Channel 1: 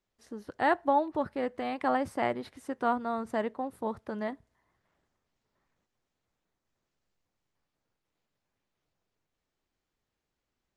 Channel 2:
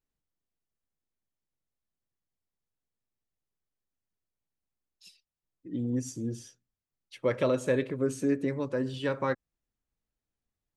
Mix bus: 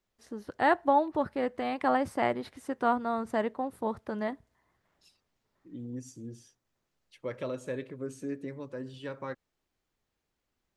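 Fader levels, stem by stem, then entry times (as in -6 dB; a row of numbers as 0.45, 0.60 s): +1.5, -9.0 dB; 0.00, 0.00 s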